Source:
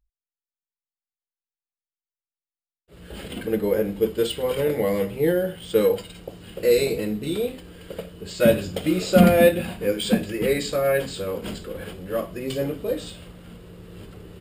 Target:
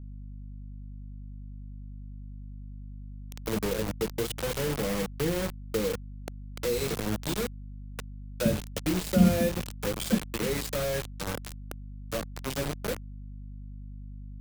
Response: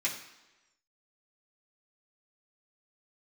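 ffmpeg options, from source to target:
-filter_complex "[0:a]acrusher=bits=3:mix=0:aa=0.000001,acrossover=split=250[link_01][link_02];[link_02]acompressor=threshold=-23dB:ratio=2.5[link_03];[link_01][link_03]amix=inputs=2:normalize=0,aeval=exprs='val(0)+0.0126*(sin(2*PI*50*n/s)+sin(2*PI*2*50*n/s)/2+sin(2*PI*3*50*n/s)/3+sin(2*PI*4*50*n/s)/4+sin(2*PI*5*50*n/s)/5)':channel_layout=same,bass=frequency=250:gain=5,treble=frequency=4000:gain=3,volume=-7dB"

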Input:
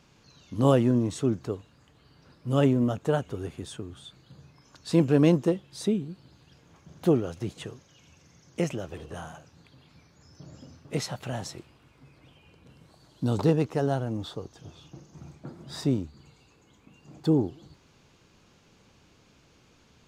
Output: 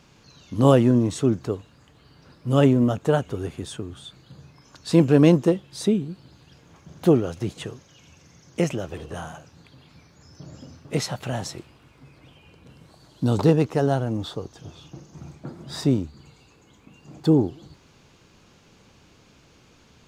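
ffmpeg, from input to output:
ffmpeg -i in.wav -af "volume=5dB" out.wav

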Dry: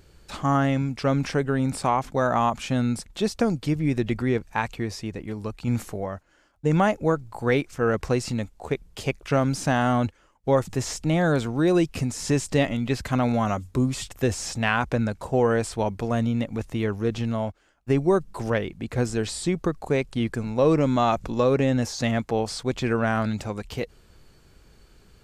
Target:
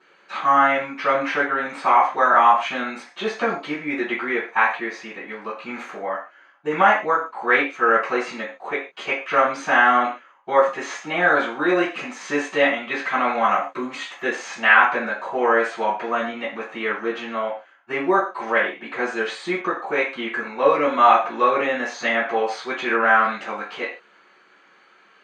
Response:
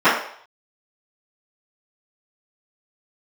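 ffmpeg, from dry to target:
-filter_complex "[0:a]bandpass=frequency=2000:width_type=q:width=0.6:csg=0[link_01];[1:a]atrim=start_sample=2205,afade=type=out:start_time=0.24:duration=0.01,atrim=end_sample=11025,asetrate=52920,aresample=44100[link_02];[link_01][link_02]afir=irnorm=-1:irlink=0,volume=-13.5dB"

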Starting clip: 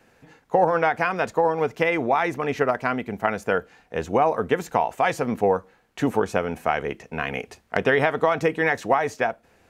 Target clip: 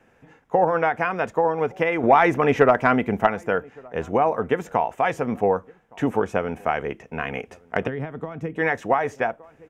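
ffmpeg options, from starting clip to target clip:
ffmpeg -i in.wav -filter_complex "[0:a]asettb=1/sr,asplit=3[link_01][link_02][link_03];[link_01]atrim=end=2.034[link_04];[link_02]atrim=start=2.03:end=3.27,asetpts=PTS-STARTPTS,afade=type=in:duration=0.004:curve=qsin,afade=type=out:start_time=1.236:duration=0.004:curve=qsin,acontrast=83[link_05];[link_03]atrim=start=3.266[link_06];[link_04][link_05]acrossfade=duration=0.004:curve1=hsin:curve2=qsin[link_07];[link_07][link_06]acrossfade=duration=0.004:curve1=qsin:curve2=hsin,equalizer=frequency=4300:width=4.2:gain=-12,asplit=2[link_08][link_09];[link_09]adelay=1166,volume=-26dB,highshelf=frequency=4000:gain=-26.2[link_10];[link_08][link_10]amix=inputs=2:normalize=0,asettb=1/sr,asplit=3[link_11][link_12][link_13];[link_11]atrim=end=7.874[link_14];[link_12]atrim=start=7.87:end=8.56,asetpts=PTS-STARTPTS,afade=type=in:duration=0.004:curve=qsin,afade=type=out:start_time=0.686:duration=0.004:curve=qsin,acrossover=split=280[link_15][link_16];[link_16]acompressor=threshold=-33dB:ratio=10[link_17];[link_15][link_17]amix=inputs=2:normalize=0[link_18];[link_13]atrim=start=8.556[link_19];[link_14][link_18]acrossfade=duration=0.004:curve1=hsin:curve2=qsin[link_20];[link_20][link_19]acrossfade=duration=0.004:curve1=qsin:curve2=hsin,highshelf=frequency=5500:gain=-10" out.wav

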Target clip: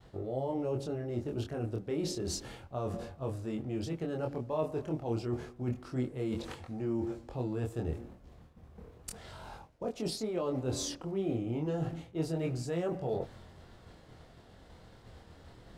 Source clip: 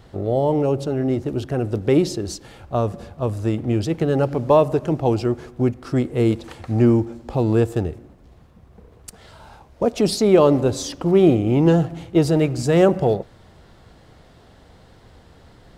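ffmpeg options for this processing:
ffmpeg -i in.wav -af "agate=range=-33dB:threshold=-44dB:ratio=3:detection=peak,areverse,acompressor=threshold=-30dB:ratio=5,areverse,flanger=delay=22.5:depth=3.4:speed=0.3" out.wav

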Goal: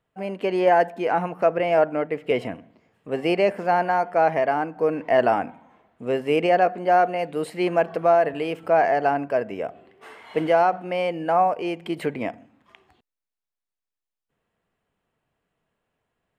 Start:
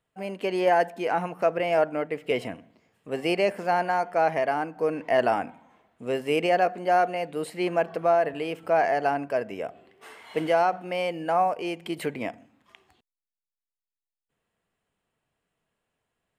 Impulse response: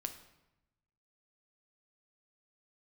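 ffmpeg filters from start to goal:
-af "asetnsamples=nb_out_samples=441:pad=0,asendcmd='7.19 highshelf g -5;8.68 highshelf g -10',highshelf=frequency=3800:gain=-10.5,volume=4dB"

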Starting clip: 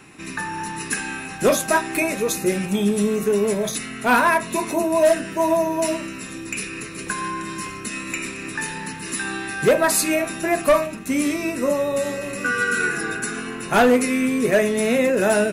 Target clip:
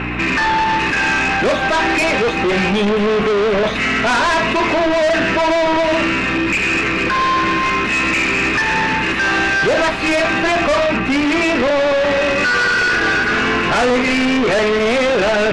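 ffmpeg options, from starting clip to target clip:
ffmpeg -i in.wav -filter_complex "[0:a]aeval=exprs='val(0)+0.02*(sin(2*PI*60*n/s)+sin(2*PI*2*60*n/s)/2+sin(2*PI*3*60*n/s)/3+sin(2*PI*4*60*n/s)/4+sin(2*PI*5*60*n/s)/5)':channel_layout=same,asplit=2[link_01][link_02];[link_02]highpass=frequency=720:poles=1,volume=28dB,asoftclip=type=tanh:threshold=-9dB[link_03];[link_01][link_03]amix=inputs=2:normalize=0,lowpass=frequency=1100:poles=1,volume=-6dB,lowpass=frequency=2700:width_type=q:width=1.9,aeval=exprs='0.355*(cos(1*acos(clip(val(0)/0.355,-1,1)))-cos(1*PI/2))+0.0708*(cos(5*acos(clip(val(0)/0.355,-1,1)))-cos(5*PI/2))':channel_layout=same" out.wav

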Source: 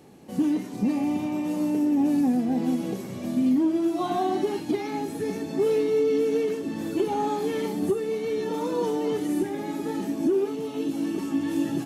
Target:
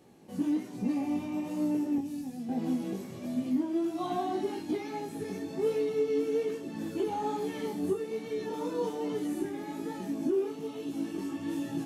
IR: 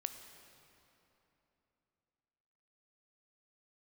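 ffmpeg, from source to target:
-filter_complex "[0:a]asettb=1/sr,asplit=3[link_01][link_02][link_03];[link_01]atrim=end=1.984[link_04];[link_02]atrim=start=1.98:end=2.49,asetpts=PTS-STARTPTS,afade=type=in:duration=0.004:curve=qsin,afade=type=out:start_time=0.506:duration=0.004:curve=qsin,acrossover=split=170|3000[link_05][link_06][link_07];[link_06]acompressor=threshold=-35dB:ratio=6[link_08];[link_05][link_08][link_07]amix=inputs=3:normalize=0[link_09];[link_03]atrim=start=2.486[link_10];[link_04][link_09]acrossfade=duration=0.004:curve1=hsin:curve2=qsin[link_11];[link_11][link_10]acrossfade=duration=0.004:curve1=qsin:curve2=hsin,flanger=delay=16.5:depth=4.5:speed=1.2,volume=-3.5dB"

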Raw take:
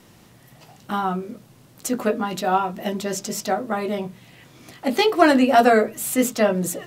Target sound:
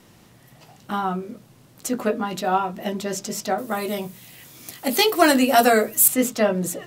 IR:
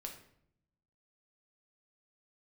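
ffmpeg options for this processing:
-filter_complex "[0:a]asettb=1/sr,asplit=3[link_01][link_02][link_03];[link_01]atrim=end=3.584[link_04];[link_02]atrim=start=3.58:end=6.08,asetpts=PTS-STARTPTS,afade=type=in:duration=0.004:curve=qsin,afade=type=out:start_time=2.496:duration=0.004:curve=qsin,aemphasis=mode=production:type=75fm[link_05];[link_03]atrim=start=6.076[link_06];[link_04][link_05]acrossfade=duration=0.004:curve1=hsin:curve2=qsin[link_07];[link_07][link_06]acrossfade=duration=0.004:curve1=qsin:curve2=hsin,volume=-1dB"

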